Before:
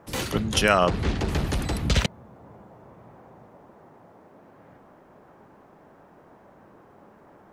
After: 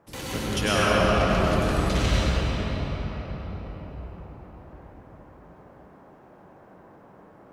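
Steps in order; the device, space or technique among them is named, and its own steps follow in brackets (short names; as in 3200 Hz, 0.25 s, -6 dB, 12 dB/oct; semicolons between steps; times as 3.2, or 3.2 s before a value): cathedral (reverb RT60 5.3 s, pre-delay 88 ms, DRR -8.5 dB); gain -8 dB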